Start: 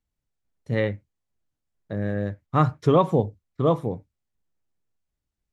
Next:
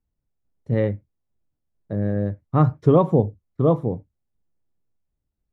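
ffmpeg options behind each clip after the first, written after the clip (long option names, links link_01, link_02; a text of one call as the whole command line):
ffmpeg -i in.wav -af "tiltshelf=frequency=1300:gain=8,volume=-3.5dB" out.wav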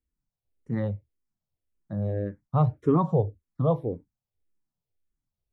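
ffmpeg -i in.wav -filter_complex "[0:a]asplit=2[link_01][link_02];[link_02]afreqshift=-1.8[link_03];[link_01][link_03]amix=inputs=2:normalize=1,volume=-3dB" out.wav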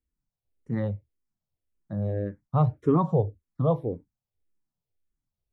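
ffmpeg -i in.wav -af anull out.wav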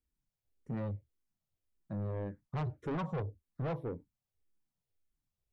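ffmpeg -i in.wav -filter_complex "[0:a]asplit=2[link_01][link_02];[link_02]acompressor=threshold=-32dB:ratio=6,volume=-1.5dB[link_03];[link_01][link_03]amix=inputs=2:normalize=0,asoftclip=type=tanh:threshold=-25dB,volume=-7.5dB" out.wav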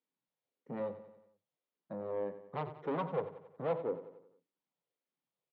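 ffmpeg -i in.wav -af "highpass=frequency=190:width=0.5412,highpass=frequency=190:width=1.3066,equalizer=frequency=210:width_type=q:width=4:gain=-5,equalizer=frequency=330:width_type=q:width=4:gain=-4,equalizer=frequency=510:width_type=q:width=4:gain=6,equalizer=frequency=920:width_type=q:width=4:gain=3,equalizer=frequency=1600:width_type=q:width=4:gain=-4,equalizer=frequency=2600:width_type=q:width=4:gain=-3,lowpass=frequency=3700:width=0.5412,lowpass=frequency=3700:width=1.3066,aecho=1:1:91|182|273|364|455:0.224|0.119|0.0629|0.0333|0.0177,volume=1.5dB" out.wav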